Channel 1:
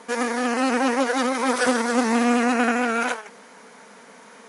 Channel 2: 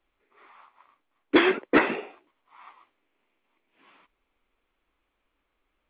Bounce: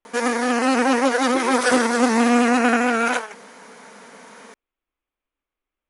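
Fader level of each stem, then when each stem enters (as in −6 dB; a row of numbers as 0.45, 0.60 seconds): +3.0, −11.0 decibels; 0.05, 0.00 seconds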